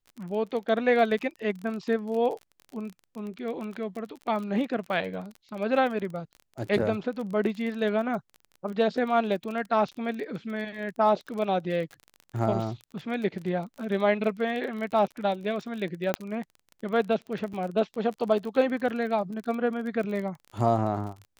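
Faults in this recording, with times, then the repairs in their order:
crackle 32 per s -34 dBFS
16.14 s: pop -11 dBFS
17.53–17.54 s: dropout 6.2 ms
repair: de-click; interpolate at 17.53 s, 6.2 ms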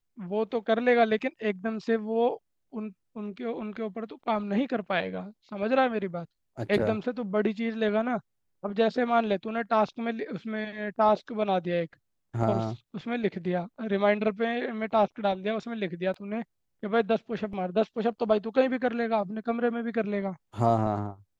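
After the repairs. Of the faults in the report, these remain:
16.14 s: pop

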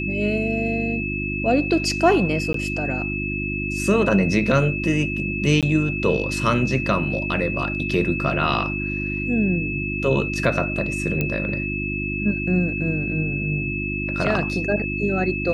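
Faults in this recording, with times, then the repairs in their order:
hum 50 Hz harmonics 7 -28 dBFS
whine 2.6 kHz -27 dBFS
2.53–2.54 s: dropout 13 ms
5.61–5.63 s: dropout 17 ms
11.21 s: pop -10 dBFS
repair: de-click; de-hum 50 Hz, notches 7; band-stop 2.6 kHz, Q 30; interpolate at 2.53 s, 13 ms; interpolate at 5.61 s, 17 ms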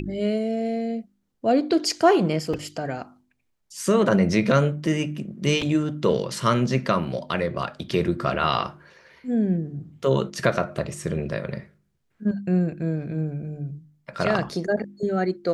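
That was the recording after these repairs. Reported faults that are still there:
nothing left

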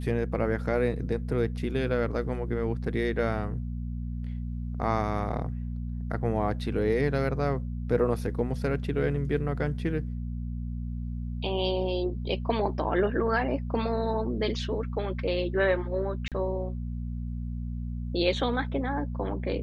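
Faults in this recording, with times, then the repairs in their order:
hum 60 Hz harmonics 4 -33 dBFS
16.28–16.32 s: dropout 37 ms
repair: de-hum 60 Hz, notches 4; interpolate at 16.28 s, 37 ms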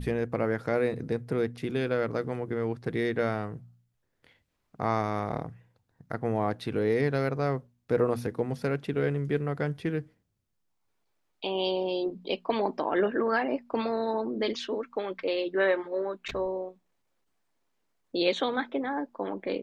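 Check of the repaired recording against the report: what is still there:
nothing left

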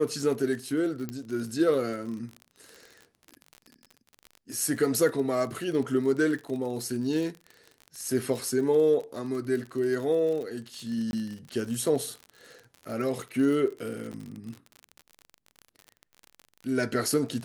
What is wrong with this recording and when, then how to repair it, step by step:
crackle 44 per s -34 dBFS
1.09 s: pop -19 dBFS
11.11–11.13 s: dropout 21 ms
14.12–14.13 s: dropout 8.6 ms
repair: de-click; interpolate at 11.11 s, 21 ms; interpolate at 14.12 s, 8.6 ms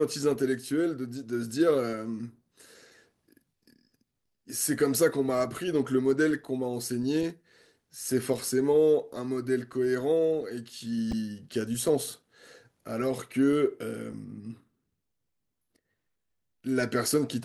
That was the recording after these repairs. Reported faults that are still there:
1.09 s: pop

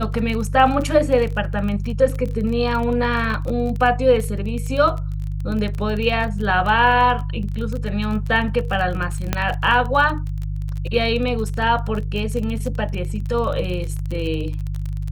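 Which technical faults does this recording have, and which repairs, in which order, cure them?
crackle 28 per s -25 dBFS
hum 50 Hz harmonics 3 -25 dBFS
9.33 s: pop -4 dBFS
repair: de-click; de-hum 50 Hz, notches 3

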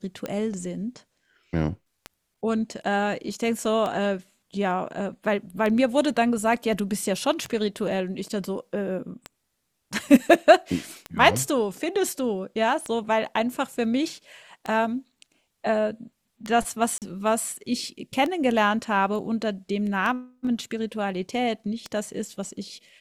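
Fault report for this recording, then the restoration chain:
tick 33 1/3 rpm -16 dBFS
16.98–17.02 s: dropout 38 ms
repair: de-click; interpolate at 16.98 s, 38 ms

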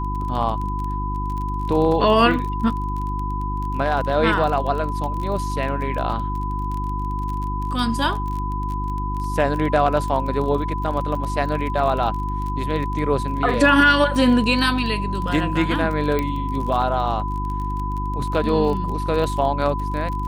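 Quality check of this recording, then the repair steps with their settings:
crackle 26 per s -27 dBFS
hum 50 Hz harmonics 7 -26 dBFS
whine 1 kHz -27 dBFS
16.19 s: pop -10 dBFS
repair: de-click; band-stop 1 kHz, Q 30; de-hum 50 Hz, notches 7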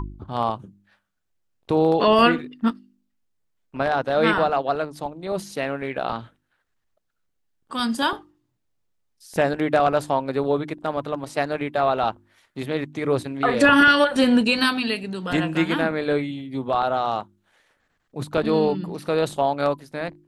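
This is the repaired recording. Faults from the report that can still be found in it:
16.19 s: pop

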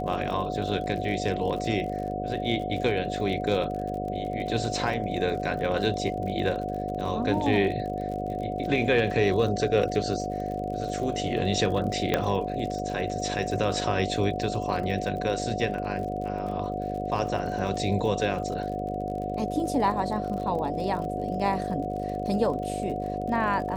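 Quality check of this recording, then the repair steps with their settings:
buzz 50 Hz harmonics 13 -33 dBFS
crackle 45 per s -35 dBFS
whine 730 Hz -32 dBFS
12.14 s: pop -9 dBFS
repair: de-click; de-hum 50 Hz, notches 13; band-stop 730 Hz, Q 30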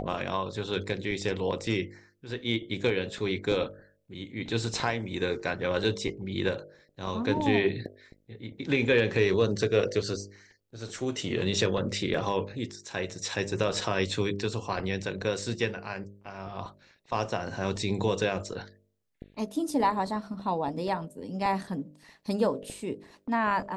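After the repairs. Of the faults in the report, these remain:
12.14 s: pop

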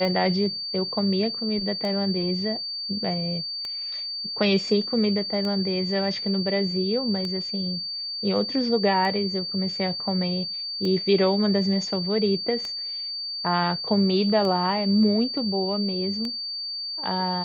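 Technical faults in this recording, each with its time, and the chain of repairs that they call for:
tick 33 1/3 rpm -18 dBFS
whine 4.6 kHz -29 dBFS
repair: de-click; band-stop 4.6 kHz, Q 30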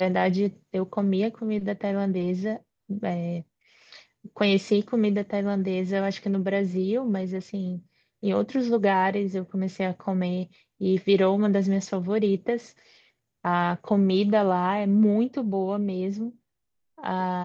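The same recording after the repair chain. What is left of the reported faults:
nothing left

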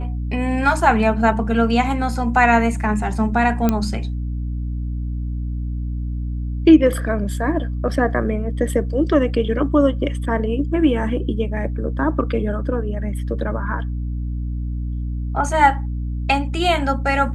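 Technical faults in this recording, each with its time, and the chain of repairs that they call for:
hum 60 Hz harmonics 5 -24 dBFS
3.69 s: pop -5 dBFS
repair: de-click; de-hum 60 Hz, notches 5

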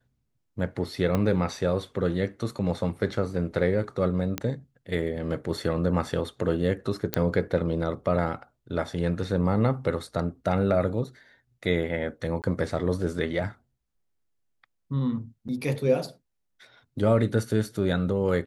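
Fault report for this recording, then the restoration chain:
1.15 s: pop -13 dBFS
4.38 s: pop -11 dBFS
7.14 s: pop -7 dBFS
12.42–12.44 s: dropout 18 ms
15.48–15.49 s: dropout 8 ms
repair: de-click; interpolate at 12.42 s, 18 ms; interpolate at 15.48 s, 8 ms

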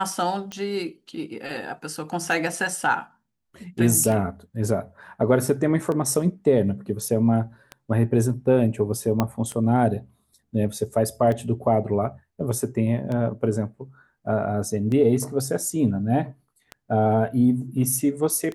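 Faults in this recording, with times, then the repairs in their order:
tick 33 1/3 rpm -18 dBFS
9.20 s: pop -8 dBFS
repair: de-click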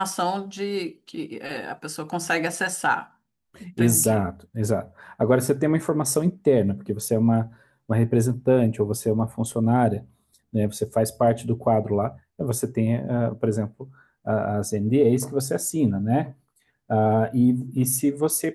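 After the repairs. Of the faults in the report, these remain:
9.20 s: pop

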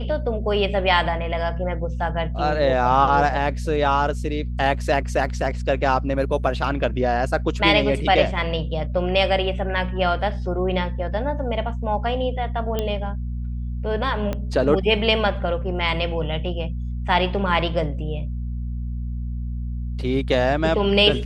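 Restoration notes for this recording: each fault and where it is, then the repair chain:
hum 60 Hz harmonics 4 -27 dBFS
12.79 s: pop -11 dBFS
14.33 s: pop -13 dBFS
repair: de-click; de-hum 60 Hz, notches 4

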